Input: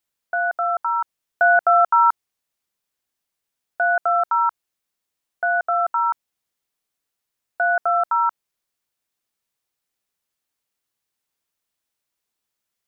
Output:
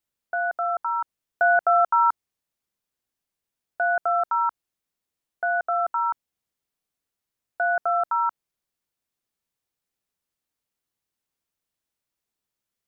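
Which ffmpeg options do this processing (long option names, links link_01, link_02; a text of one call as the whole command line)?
ffmpeg -i in.wav -af "lowshelf=frequency=460:gain=6.5,volume=-5dB" out.wav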